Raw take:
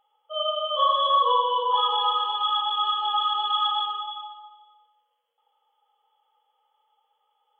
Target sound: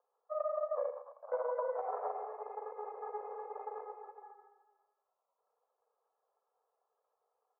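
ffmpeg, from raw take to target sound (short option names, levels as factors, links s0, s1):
-filter_complex "[0:a]aeval=exprs='abs(val(0))':c=same,asettb=1/sr,asplit=3[s0][s1][s2];[s0]atrim=end=0.904[s3];[s1]atrim=start=0.9:end=1.32,asetpts=PTS-STARTPTS,afade=t=in:d=0.004:c=qsin,afade=t=out:st=0.416:d=0.004:c=qsin,aeval=exprs='(tanh(28.2*val(0)+0.6)-tanh(0.6))/28.2':c=same[s4];[s2]atrim=start=1.316[s5];[s3][s4]acrossfade=d=0.004:c1=hsin:c2=qsin[s6];[s6][s5]acrossfade=d=0.004:c1=qsin:c2=hsin,asuperpass=centerf=760:order=12:qfactor=1.1,aecho=1:1:83|114:0.2|0.106,acompressor=threshold=0.01:ratio=6,volume=2.51"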